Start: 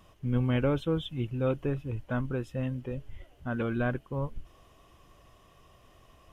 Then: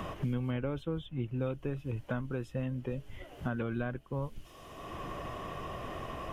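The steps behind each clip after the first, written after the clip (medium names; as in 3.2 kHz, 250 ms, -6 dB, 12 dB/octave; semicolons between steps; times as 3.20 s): three bands compressed up and down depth 100%; trim -5 dB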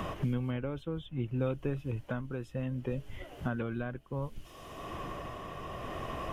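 tremolo 0.64 Hz, depth 40%; trim +2.5 dB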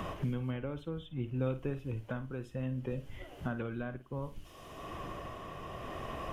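flutter echo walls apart 9.3 m, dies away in 0.26 s; trim -2.5 dB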